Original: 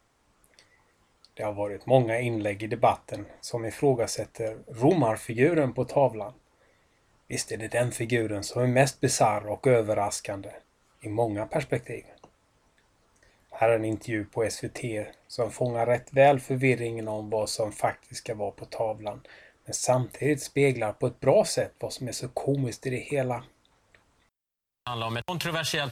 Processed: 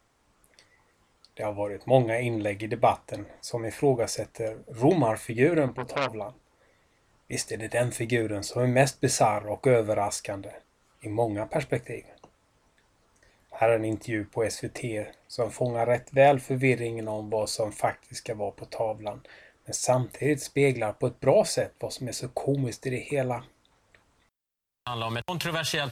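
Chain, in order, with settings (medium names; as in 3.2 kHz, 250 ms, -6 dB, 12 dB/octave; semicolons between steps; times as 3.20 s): 5.68–6.13 s: transformer saturation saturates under 2.3 kHz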